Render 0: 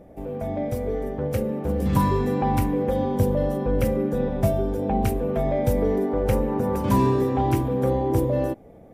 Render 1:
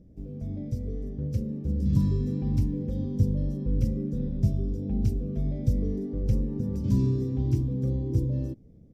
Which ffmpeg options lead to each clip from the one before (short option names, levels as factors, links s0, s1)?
-af "firequalizer=gain_entry='entry(130,0);entry(760,-30);entry(5200,-5);entry(9700,-20)':delay=0.05:min_phase=1"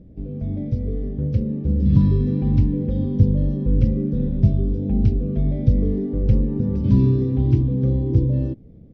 -af "lowpass=f=3900:w=0.5412,lowpass=f=3900:w=1.3066,volume=2.51"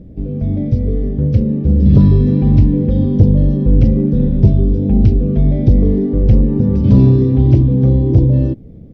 -af "aeval=exprs='0.75*sin(PI/2*1.58*val(0)/0.75)':c=same,volume=1.12"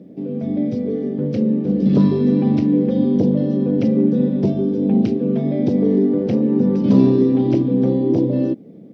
-af "highpass=f=200:w=0.5412,highpass=f=200:w=1.3066,volume=1.19"